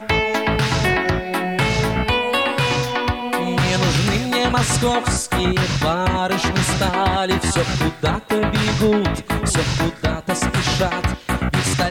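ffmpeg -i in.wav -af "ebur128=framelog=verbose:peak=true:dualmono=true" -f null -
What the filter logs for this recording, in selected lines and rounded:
Integrated loudness:
  I:         -16.0 LUFS
  Threshold: -26.0 LUFS
Loudness range:
  LRA:         1.1 LU
  Threshold: -35.9 LUFS
  LRA low:   -16.5 LUFS
  LRA high:  -15.4 LUFS
True peak:
  Peak:       -6.8 dBFS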